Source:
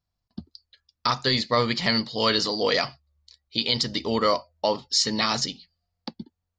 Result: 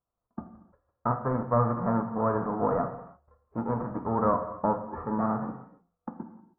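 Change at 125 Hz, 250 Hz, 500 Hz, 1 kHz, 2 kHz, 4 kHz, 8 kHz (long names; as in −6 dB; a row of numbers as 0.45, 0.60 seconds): +2.0 dB, 0.0 dB, −3.0 dB, −0.5 dB, −15.5 dB, below −40 dB, below −40 dB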